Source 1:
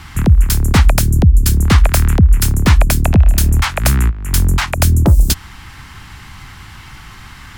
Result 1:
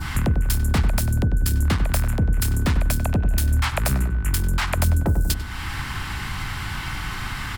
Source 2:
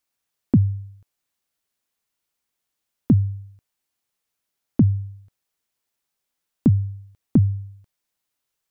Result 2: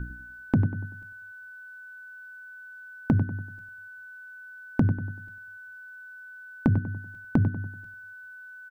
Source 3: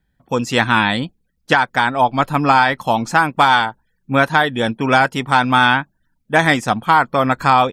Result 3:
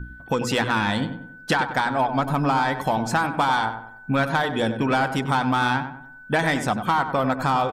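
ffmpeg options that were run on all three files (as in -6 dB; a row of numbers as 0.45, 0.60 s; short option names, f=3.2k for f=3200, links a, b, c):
-filter_complex "[0:a]aeval=exprs='val(0)+0.02*(sin(2*PI*60*n/s)+sin(2*PI*2*60*n/s)/2+sin(2*PI*3*60*n/s)/3+sin(2*PI*4*60*n/s)/4+sin(2*PI*5*60*n/s)/5)':c=same,acontrast=62,equalizer=f=6.3k:w=3.6:g=-3.5,bandreject=f=60:t=h:w=6,bandreject=f=120:t=h:w=6,bandreject=f=180:t=h:w=6,bandreject=f=240:t=h:w=6,bandreject=f=300:t=h:w=6,bandreject=f=360:t=h:w=6,bandreject=f=420:t=h:w=6,bandreject=f=480:t=h:w=6,adynamicequalizer=threshold=0.0501:dfrequency=2400:dqfactor=0.78:tfrequency=2400:tqfactor=0.78:attack=5:release=100:ratio=0.375:range=3:mode=cutabove:tftype=bell,acompressor=threshold=-23dB:ratio=3,asplit=2[a][b];[b]adelay=96,lowpass=f=1.8k:p=1,volume=-8.5dB,asplit=2[c][d];[d]adelay=96,lowpass=f=1.8k:p=1,volume=0.42,asplit=2[e][f];[f]adelay=96,lowpass=f=1.8k:p=1,volume=0.42,asplit=2[g][h];[h]adelay=96,lowpass=f=1.8k:p=1,volume=0.42,asplit=2[i][j];[j]adelay=96,lowpass=f=1.8k:p=1,volume=0.42[k];[c][e][g][i][k]amix=inputs=5:normalize=0[l];[a][l]amix=inputs=2:normalize=0,aeval=exprs='val(0)+0.00794*sin(2*PI*1500*n/s)':c=same"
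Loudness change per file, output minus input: -10.0, -6.5, -7.0 LU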